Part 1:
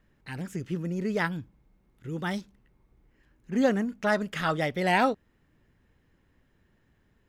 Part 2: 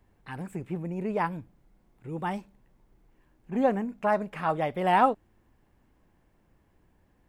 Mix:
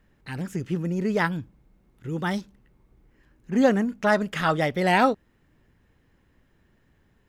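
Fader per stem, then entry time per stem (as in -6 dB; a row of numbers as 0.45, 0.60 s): +3.0, -9.5 dB; 0.00, 0.00 s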